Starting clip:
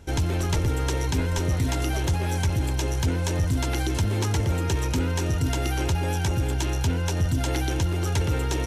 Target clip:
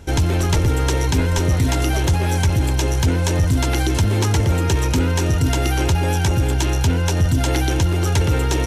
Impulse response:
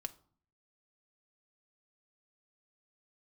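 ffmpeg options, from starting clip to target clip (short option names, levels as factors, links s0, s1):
-af "acontrast=81"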